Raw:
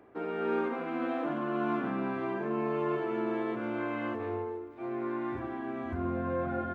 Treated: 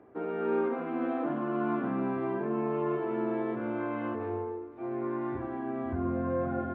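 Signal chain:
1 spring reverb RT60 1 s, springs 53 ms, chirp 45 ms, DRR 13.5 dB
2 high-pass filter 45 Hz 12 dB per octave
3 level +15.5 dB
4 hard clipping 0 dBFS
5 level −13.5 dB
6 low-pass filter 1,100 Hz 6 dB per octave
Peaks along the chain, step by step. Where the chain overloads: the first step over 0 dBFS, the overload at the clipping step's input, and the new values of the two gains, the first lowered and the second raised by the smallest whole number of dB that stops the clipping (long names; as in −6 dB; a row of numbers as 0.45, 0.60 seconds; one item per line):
−18.0, −18.5, −3.0, −3.0, −16.5, −18.0 dBFS
no step passes full scale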